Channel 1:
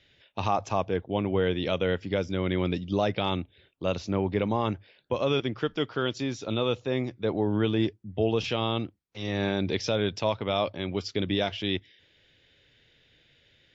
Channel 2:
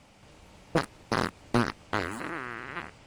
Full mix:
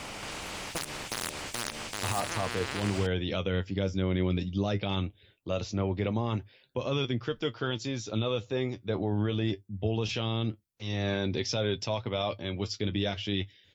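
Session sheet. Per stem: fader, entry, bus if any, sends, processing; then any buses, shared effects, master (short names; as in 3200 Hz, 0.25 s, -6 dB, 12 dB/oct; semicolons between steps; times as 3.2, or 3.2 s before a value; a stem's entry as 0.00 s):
0.0 dB, 1.65 s, no send, low shelf 220 Hz +6 dB; flange 0.2 Hz, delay 7.6 ms, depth 3.3 ms, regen +49%; high shelf 5300 Hz +11 dB
+0.5 dB, 0.00 s, no send, de-hum 74.81 Hz, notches 8; spectral compressor 4:1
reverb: off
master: limiter -19 dBFS, peak gain reduction 9.5 dB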